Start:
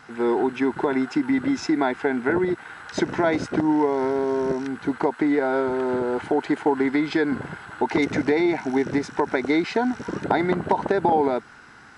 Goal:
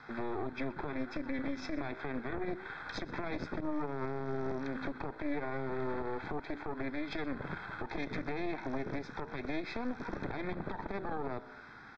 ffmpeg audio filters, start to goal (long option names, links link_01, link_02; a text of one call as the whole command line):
ffmpeg -i in.wav -filter_complex "[0:a]flanger=delay=8.5:depth=8.9:regen=-83:speed=0.3:shape=sinusoidal,acompressor=threshold=-33dB:ratio=4,aeval=exprs='0.126*(cos(1*acos(clip(val(0)/0.126,-1,1)))-cos(1*PI/2))+0.0562*(cos(4*acos(clip(val(0)/0.126,-1,1)))-cos(4*PI/2))':channel_layout=same,lowpass=frequency=4600:width=0.5412,lowpass=frequency=4600:width=1.3066,acrossover=split=200|3000[link_01][link_02][link_03];[link_02]acompressor=threshold=-32dB:ratio=6[link_04];[link_01][link_04][link_03]amix=inputs=3:normalize=0,asuperstop=centerf=2900:order=20:qfactor=5.4,alimiter=level_in=4.5dB:limit=-24dB:level=0:latency=1:release=44,volume=-4.5dB,aecho=1:1:124:0.0891" out.wav